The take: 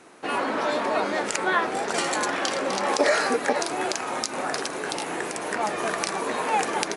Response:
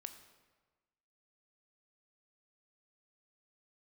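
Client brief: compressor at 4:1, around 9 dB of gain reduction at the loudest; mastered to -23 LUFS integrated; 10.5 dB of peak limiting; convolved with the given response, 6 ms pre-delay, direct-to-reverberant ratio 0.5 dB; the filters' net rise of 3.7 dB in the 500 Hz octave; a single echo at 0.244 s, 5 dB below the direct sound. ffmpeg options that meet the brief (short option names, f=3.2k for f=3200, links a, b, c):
-filter_complex "[0:a]equalizer=f=500:t=o:g=4.5,acompressor=threshold=-24dB:ratio=4,alimiter=limit=-19dB:level=0:latency=1,aecho=1:1:244:0.562,asplit=2[a][b];[1:a]atrim=start_sample=2205,adelay=6[c];[b][c]afir=irnorm=-1:irlink=0,volume=4dB[d];[a][d]amix=inputs=2:normalize=0,volume=2.5dB"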